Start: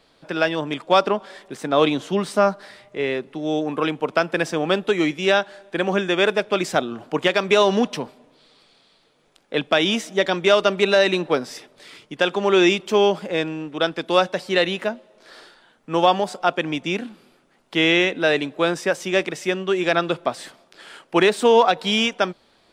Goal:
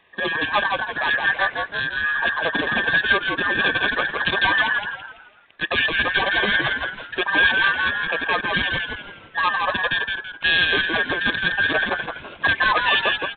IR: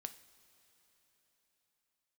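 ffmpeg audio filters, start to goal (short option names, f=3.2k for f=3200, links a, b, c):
-filter_complex "[0:a]afftfilt=real='real(if(between(b,1,1012),(2*floor((b-1)/92)+1)*92-b,b),0)':imag='imag(if(between(b,1,1012),(2*floor((b-1)/92)+1)*92-b,b),0)*if(between(b,1,1012),-1,1)':win_size=2048:overlap=0.75,highpass=72,atempo=1.7,aresample=8000,asoftclip=type=tanh:threshold=-13dB,aresample=44100,asuperstop=centerf=1400:order=8:qfactor=4.1,asplit=2[a][b];[b]asplit=5[c][d][e][f][g];[c]adelay=166,afreqshift=-69,volume=-3.5dB[h];[d]adelay=332,afreqshift=-138,volume=-12.1dB[i];[e]adelay=498,afreqshift=-207,volume=-20.8dB[j];[f]adelay=664,afreqshift=-276,volume=-29.4dB[k];[g]adelay=830,afreqshift=-345,volume=-38dB[l];[h][i][j][k][l]amix=inputs=5:normalize=0[m];[a][m]amix=inputs=2:normalize=0,volume=3dB"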